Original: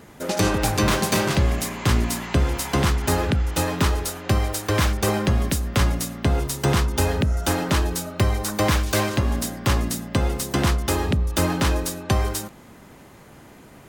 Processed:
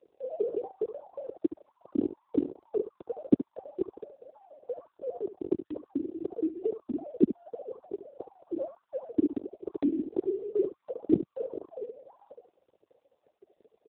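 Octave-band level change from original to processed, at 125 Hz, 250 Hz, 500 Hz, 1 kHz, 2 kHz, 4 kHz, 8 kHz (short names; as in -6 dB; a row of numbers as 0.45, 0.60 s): -27.5 dB, -6.0 dB, -6.0 dB, -24.5 dB, under -35 dB, under -40 dB, under -40 dB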